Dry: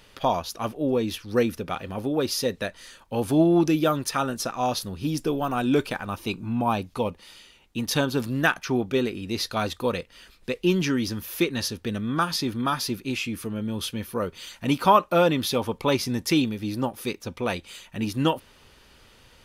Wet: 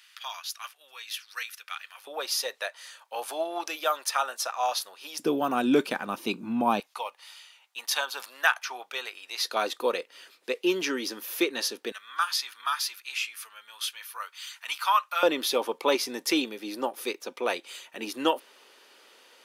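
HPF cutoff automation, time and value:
HPF 24 dB/oct
1400 Hz
from 2.07 s 650 Hz
from 5.19 s 200 Hz
from 6.8 s 750 Hz
from 9.44 s 340 Hz
from 11.92 s 1100 Hz
from 15.23 s 340 Hz

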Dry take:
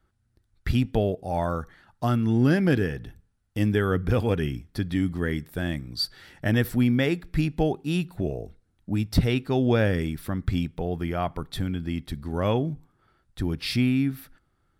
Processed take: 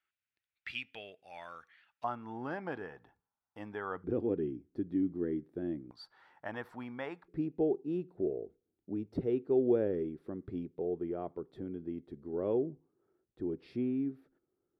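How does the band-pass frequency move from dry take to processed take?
band-pass, Q 3.6
2500 Hz
from 2.04 s 910 Hz
from 4.04 s 340 Hz
from 5.91 s 950 Hz
from 7.28 s 390 Hz

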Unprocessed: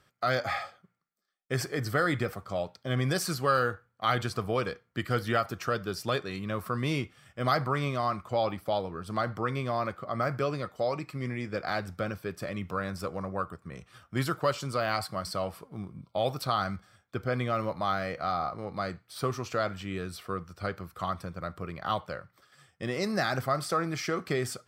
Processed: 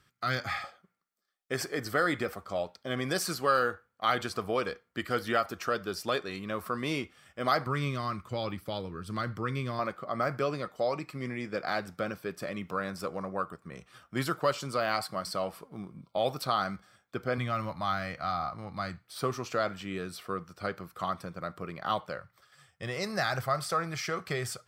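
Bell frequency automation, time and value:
bell -11 dB 0.93 oct
610 Hz
from 0.64 s 120 Hz
from 7.66 s 720 Hz
from 9.79 s 90 Hz
from 17.38 s 440 Hz
from 19.04 s 79 Hz
from 22.18 s 280 Hz

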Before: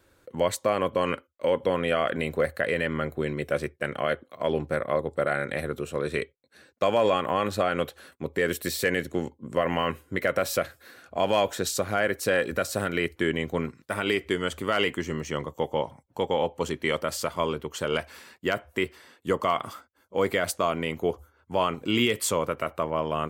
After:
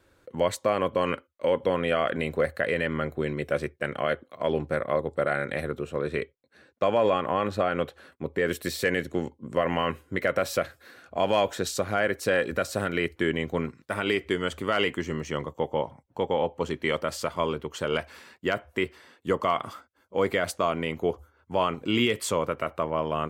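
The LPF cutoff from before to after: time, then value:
LPF 6 dB/oct
6400 Hz
from 5.71 s 2500 Hz
from 8.47 s 6000 Hz
from 15.53 s 2600 Hz
from 16.7 s 5300 Hz

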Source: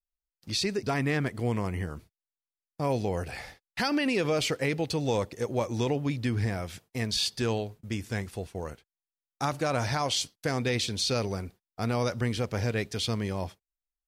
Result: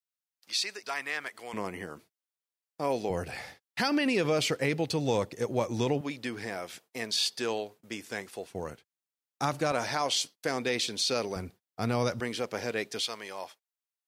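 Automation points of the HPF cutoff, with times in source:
950 Hz
from 1.53 s 280 Hz
from 3.1 s 110 Hz
from 6.01 s 350 Hz
from 8.5 s 120 Hz
from 9.72 s 270 Hz
from 11.36 s 100 Hz
from 12.2 s 300 Hz
from 13.01 s 690 Hz

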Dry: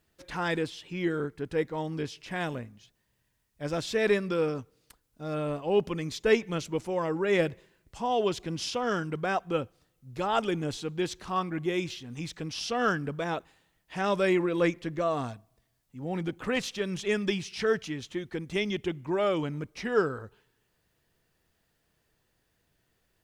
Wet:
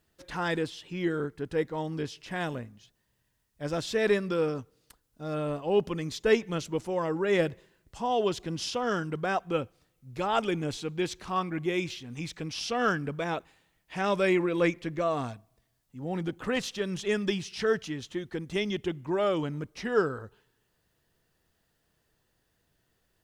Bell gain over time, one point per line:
bell 2300 Hz 0.24 oct
9.21 s -3.5 dB
9.62 s +3.5 dB
15.25 s +3.5 dB
16.01 s -4.5 dB

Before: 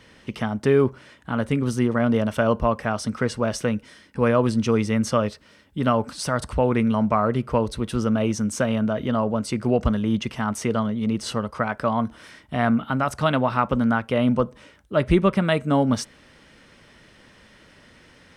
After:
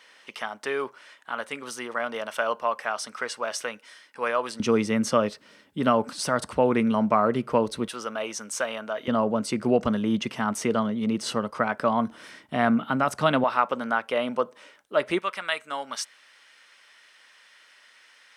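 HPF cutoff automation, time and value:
780 Hz
from 4.6 s 200 Hz
from 7.88 s 690 Hz
from 9.08 s 190 Hz
from 13.44 s 490 Hz
from 15.19 s 1200 Hz

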